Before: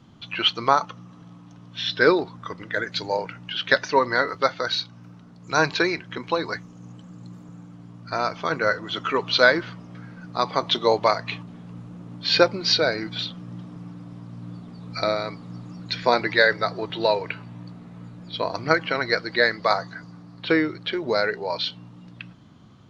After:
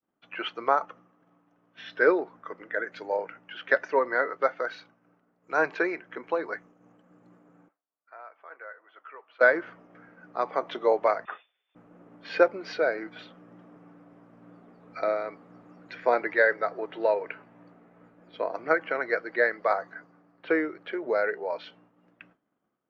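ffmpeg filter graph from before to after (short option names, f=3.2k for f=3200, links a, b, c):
-filter_complex "[0:a]asettb=1/sr,asplit=3[a][b][c];[a]atrim=end=7.684[d];[b]atrim=start=7.68:end=9.41,asetpts=PTS-STARTPTS,afade=t=in:d=0.004:c=qsin,afade=t=out:st=1.726:d=0.004:c=qsin,highpass=710,lowpass=2.6k,acompressor=threshold=-42dB:ratio=2.5:attack=3.2:release=140:knee=1:detection=peak[e];[c]atrim=start=9.406[f];[d][e]acrossfade=d=0.004:c1=hsin:c2=qsin[g];[g][f]acrossfade=d=0.004:c1=qsin:c2=hsin,asettb=1/sr,asplit=3[h][i][j];[h]atrim=end=11.254[k];[i]atrim=start=11.25:end=11.75,asetpts=PTS-STARTPTS,afade=t=in:d=0.004:c=qsin,afade=t=out:st=0.496:d=0.004:c=qsin,equalizer=f=110:w=0.35:g=-7,acrusher=bits=4:mode=log:mix=0:aa=0.000001,lowpass=f=3.1k:t=q:w=0.5098,lowpass=f=3.1k:t=q:w=0.6013,lowpass=f=3.1k:t=q:w=0.9,lowpass=f=3.1k:t=q:w=2.563,afreqshift=-3700[l];[j]atrim=start=11.746[m];[k][l]acrossfade=d=0.004:c1=hsin:c2=qsin[n];[n][m]acrossfade=d=0.004:c1=qsin:c2=hsin,equalizer=f=100:t=o:w=0.67:g=-10,equalizer=f=1k:t=o:w=0.67:g=-7,equalizer=f=4k:t=o:w=0.67:g=-9,agate=range=-33dB:threshold=-41dB:ratio=3:detection=peak,acrossover=split=340 2100:gain=0.1 1 0.112[o][p][q];[o][p][q]amix=inputs=3:normalize=0"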